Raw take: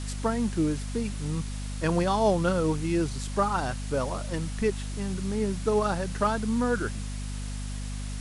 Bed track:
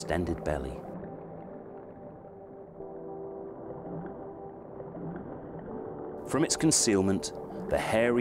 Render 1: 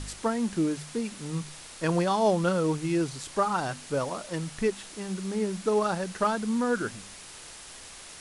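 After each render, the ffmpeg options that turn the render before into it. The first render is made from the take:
-af "bandreject=f=50:t=h:w=4,bandreject=f=100:t=h:w=4,bandreject=f=150:t=h:w=4,bandreject=f=200:t=h:w=4,bandreject=f=250:t=h:w=4"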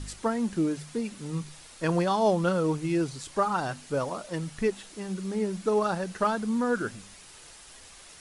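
-af "afftdn=nr=6:nf=-46"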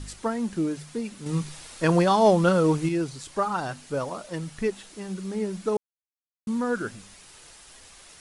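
-filter_complex "[0:a]asettb=1/sr,asplit=3[s0][s1][s2];[s0]atrim=end=1.264[s3];[s1]atrim=start=1.26:end=2.89,asetpts=PTS-STARTPTS,afade=t=in:d=0.004:c=qsin,afade=t=out:st=1.626:d=0.004:c=qsin,acontrast=37[s4];[s2]atrim=start=2.886[s5];[s3][s4]acrossfade=d=0.004:c1=hsin:c2=qsin[s6];[s6][s5]acrossfade=d=0.004:c1=qsin:c2=hsin,asplit=3[s7][s8][s9];[s7]atrim=end=5.77,asetpts=PTS-STARTPTS,afade=t=out:st=5.766:d=0.004:c=hsin[s10];[s8]atrim=start=5.77:end=6.47,asetpts=PTS-STARTPTS,volume=0[s11];[s9]atrim=start=6.47,asetpts=PTS-STARTPTS,afade=t=in:d=0.004:c=hsin[s12];[s10][s11][s12]concat=n=3:v=0:a=1"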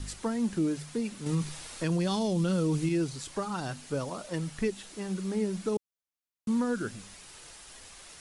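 -filter_complex "[0:a]acrossover=split=360|2400[s0][s1][s2];[s1]acompressor=threshold=0.0178:ratio=6[s3];[s0][s3][s2]amix=inputs=3:normalize=0,alimiter=limit=0.1:level=0:latency=1"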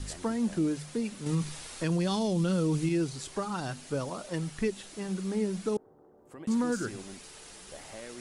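-filter_complex "[1:a]volume=0.106[s0];[0:a][s0]amix=inputs=2:normalize=0"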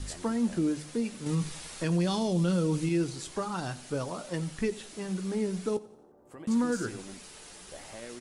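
-filter_complex "[0:a]asplit=2[s0][s1];[s1]adelay=17,volume=0.251[s2];[s0][s2]amix=inputs=2:normalize=0,aecho=1:1:88|176|264|352:0.106|0.0519|0.0254|0.0125"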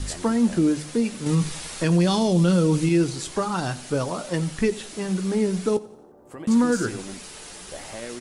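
-af "volume=2.51"

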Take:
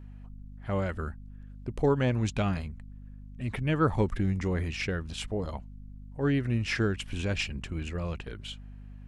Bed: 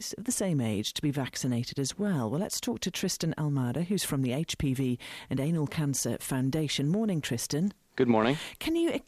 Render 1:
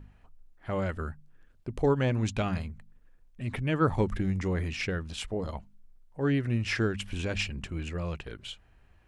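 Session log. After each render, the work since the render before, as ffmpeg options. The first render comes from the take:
-af "bandreject=f=50:t=h:w=4,bandreject=f=100:t=h:w=4,bandreject=f=150:t=h:w=4,bandreject=f=200:t=h:w=4,bandreject=f=250:t=h:w=4"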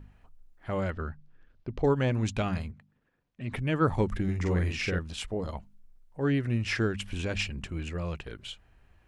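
-filter_complex "[0:a]asettb=1/sr,asplit=3[s0][s1][s2];[s0]atrim=end=0.904[s3];[s1]atrim=start=0.9:end=1.84,asetpts=PTS-STARTPTS,afade=t=in:d=0.004:c=qsin,afade=t=out:st=0.936:d=0.004:c=qsin,lowpass=f=5300:w=0.5412,lowpass=f=5300:w=1.3066[s4];[s2]atrim=start=1.836[s5];[s3][s4]acrossfade=d=0.004:c1=hsin:c2=qsin[s6];[s6][s5]acrossfade=d=0.004:c1=qsin:c2=hsin,asettb=1/sr,asplit=3[s7][s8][s9];[s7]atrim=end=2.714[s10];[s8]atrim=start=2.71:end=3.52,asetpts=PTS-STARTPTS,afade=t=in:d=0.004:c=qsin,afade=t=out:st=0.806:d=0.004:c=qsin,highpass=110,lowpass=4400[s11];[s9]atrim=start=3.516[s12];[s10][s11]acrossfade=d=0.004:c1=hsin:c2=qsin[s13];[s13][s12]acrossfade=d=0.004:c1=qsin:c2=hsin,asettb=1/sr,asplit=3[s14][s15][s16];[s14]atrim=end=4.244[s17];[s15]atrim=start=4.24:end=4.99,asetpts=PTS-STARTPTS,afade=t=in:d=0.004:c=qsin,afade=t=out:st=0.746:d=0.004:c=qsin,asplit=2[s18][s19];[s19]adelay=45,volume=0.708[s20];[s18][s20]amix=inputs=2:normalize=0,atrim=end_sample=33075[s21];[s16]atrim=start=4.986[s22];[s17][s21]acrossfade=d=0.004:c1=hsin:c2=qsin[s23];[s23][s22]acrossfade=d=0.004:c1=qsin:c2=hsin"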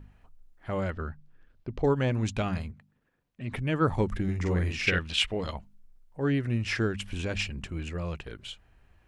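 -filter_complex "[0:a]asettb=1/sr,asplit=3[s0][s1][s2];[s0]atrim=end=4.874[s3];[s1]atrim=start=4.87:end=5.53,asetpts=PTS-STARTPTS,afade=t=in:d=0.004:c=qsin,afade=t=out:st=0.656:d=0.004:c=qsin,equalizer=f=2700:w=0.77:g=14.5[s4];[s2]atrim=start=5.526[s5];[s3][s4]acrossfade=d=0.004:c1=hsin:c2=qsin[s6];[s6][s5]acrossfade=d=0.004:c1=qsin:c2=hsin"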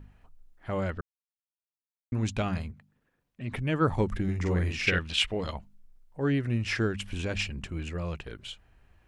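-filter_complex "[0:a]asplit=3[s0][s1][s2];[s0]atrim=end=1.01,asetpts=PTS-STARTPTS,afade=t=out:st=1.006:d=0.004:c=hsin[s3];[s1]atrim=start=1.01:end=2.12,asetpts=PTS-STARTPTS,volume=0[s4];[s2]atrim=start=2.12,asetpts=PTS-STARTPTS,afade=t=in:d=0.004:c=hsin[s5];[s3][s4][s5]concat=n=3:v=0:a=1"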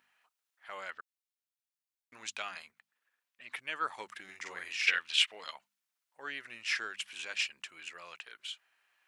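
-af "highpass=1400"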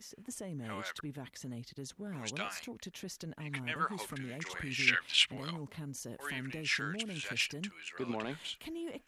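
-filter_complex "[1:a]volume=0.2[s0];[0:a][s0]amix=inputs=2:normalize=0"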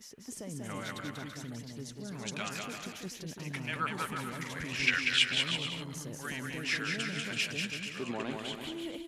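-af "aecho=1:1:190|332.5|439.4|519.5|579.6:0.631|0.398|0.251|0.158|0.1"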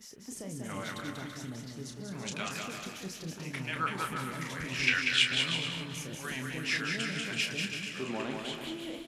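-filter_complex "[0:a]asplit=2[s0][s1];[s1]adelay=31,volume=0.473[s2];[s0][s2]amix=inputs=2:normalize=0,aecho=1:1:381|762|1143|1524|1905:0.133|0.0787|0.0464|0.0274|0.0162"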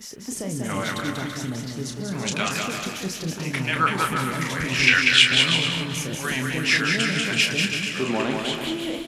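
-af "volume=3.76,alimiter=limit=0.794:level=0:latency=1"

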